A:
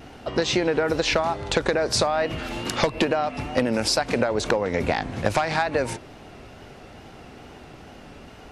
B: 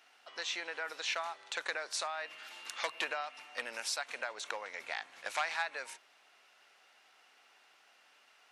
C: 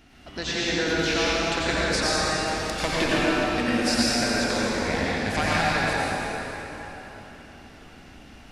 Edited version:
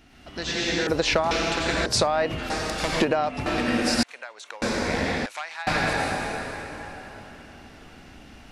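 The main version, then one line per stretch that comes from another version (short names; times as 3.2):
C
0.87–1.31 from A
1.86–2.5 from A
3.01–3.46 from A
4.03–4.62 from B
5.26–5.67 from B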